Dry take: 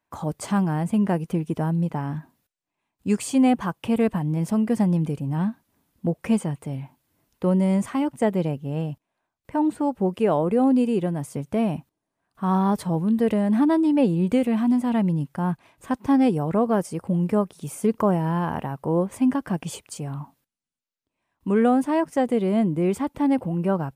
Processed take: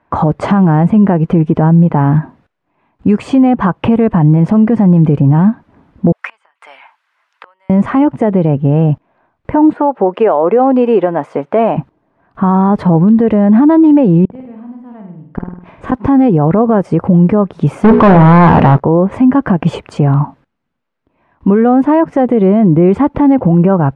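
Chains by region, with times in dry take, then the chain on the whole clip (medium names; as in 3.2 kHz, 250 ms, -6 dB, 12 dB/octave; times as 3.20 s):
6.12–7.70 s: treble shelf 2.3 kHz +7.5 dB + inverted gate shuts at -18 dBFS, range -28 dB + ladder high-pass 1 kHz, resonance 25%
9.73–11.77 s: high-pass 520 Hz + treble shelf 4.9 kHz -9.5 dB
14.25–15.92 s: inverted gate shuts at -23 dBFS, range -31 dB + valve stage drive 31 dB, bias 0.6 + flutter echo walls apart 8.7 m, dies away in 0.65 s
17.84–18.80 s: hum notches 60/120/180/240/300/360/420/480/540/600 Hz + waveshaping leveller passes 5
whole clip: low-pass 1.6 kHz 12 dB/octave; compression 2:1, threshold -29 dBFS; loudness maximiser +24 dB; trim -1 dB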